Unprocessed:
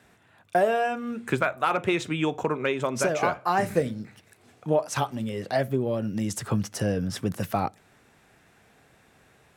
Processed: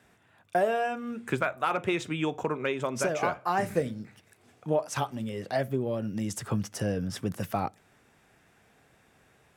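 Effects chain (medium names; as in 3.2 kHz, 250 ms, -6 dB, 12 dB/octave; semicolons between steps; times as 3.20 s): band-stop 4.1 kHz, Q 19; trim -3.5 dB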